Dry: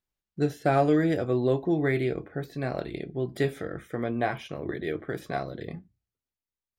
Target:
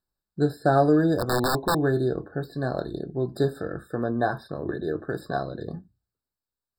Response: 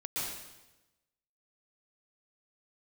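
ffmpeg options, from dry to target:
-filter_complex "[0:a]asplit=3[s0][s1][s2];[s0]afade=t=out:st=1.18:d=0.02[s3];[s1]aeval=exprs='(mod(10*val(0)+1,2)-1)/10':c=same,afade=t=in:st=1.18:d=0.02,afade=t=out:st=1.81:d=0.02[s4];[s2]afade=t=in:st=1.81:d=0.02[s5];[s3][s4][s5]amix=inputs=3:normalize=0,afftfilt=real='re*eq(mod(floor(b*sr/1024/1800),2),0)':imag='im*eq(mod(floor(b*sr/1024/1800),2),0)':win_size=1024:overlap=0.75,volume=1.41"

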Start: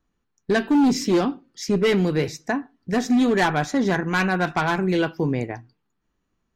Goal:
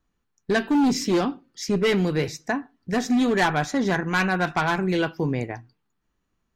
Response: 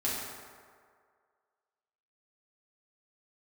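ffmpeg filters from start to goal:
-af "equalizer=f=310:w=0.65:g=-2.5"

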